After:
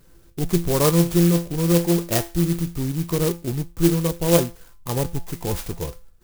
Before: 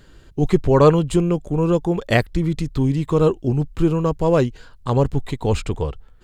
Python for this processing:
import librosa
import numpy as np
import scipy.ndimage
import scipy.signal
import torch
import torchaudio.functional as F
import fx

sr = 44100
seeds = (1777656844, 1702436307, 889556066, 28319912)

y = fx.dynamic_eq(x, sr, hz=5200.0, q=0.86, threshold_db=-45.0, ratio=4.0, max_db=5)
y = fx.comb_fb(y, sr, f0_hz=170.0, decay_s=0.33, harmonics='all', damping=0.0, mix_pct=80)
y = fx.clock_jitter(y, sr, seeds[0], jitter_ms=0.13)
y = y * librosa.db_to_amplitude(5.0)